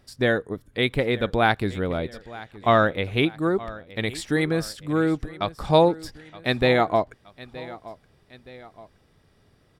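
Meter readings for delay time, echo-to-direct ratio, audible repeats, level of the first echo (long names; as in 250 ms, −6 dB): 921 ms, −17.5 dB, 2, −18.5 dB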